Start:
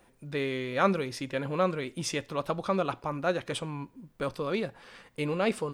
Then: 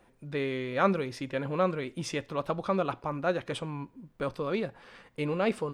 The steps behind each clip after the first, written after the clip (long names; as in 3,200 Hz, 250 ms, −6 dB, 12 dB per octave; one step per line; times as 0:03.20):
high-shelf EQ 4,300 Hz −8 dB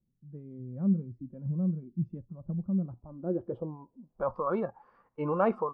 noise reduction from a noise print of the clip's start 14 dB
low-pass filter sweep 170 Hz → 1,100 Hz, 0:02.80–0:04.43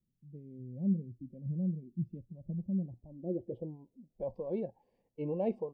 Butterworth band-reject 1,300 Hz, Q 0.63
level −4 dB